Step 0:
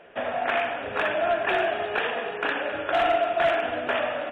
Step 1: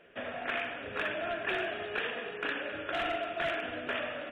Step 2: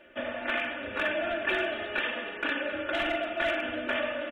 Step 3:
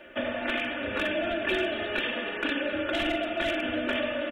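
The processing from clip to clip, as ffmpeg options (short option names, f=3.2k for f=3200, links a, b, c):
-af "equalizer=f=810:w=1.4:g=-10,volume=-5dB"
-af "aecho=1:1:3.4:0.96,volume=1.5dB"
-filter_complex "[0:a]acrossover=split=480|3000[a][b][c];[b]acompressor=threshold=-39dB:ratio=6[d];[a][d][c]amix=inputs=3:normalize=0,volume=6.5dB"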